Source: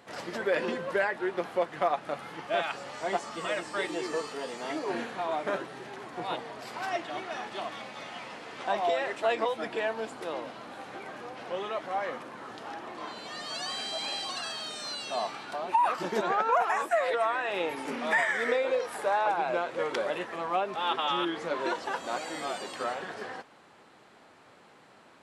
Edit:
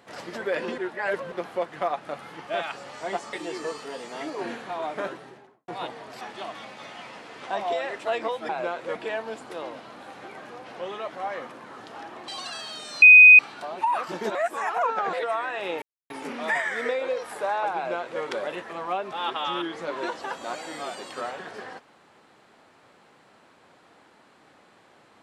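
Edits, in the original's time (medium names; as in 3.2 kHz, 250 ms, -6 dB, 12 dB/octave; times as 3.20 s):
0.78–1.32 s: reverse
3.33–3.82 s: delete
5.58–6.17 s: studio fade out
6.70–7.38 s: delete
12.99–14.19 s: delete
14.93–15.30 s: bleep 2.5 kHz -6.5 dBFS
16.26–17.04 s: reverse
17.73 s: insert silence 0.28 s
19.39–19.85 s: copy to 9.66 s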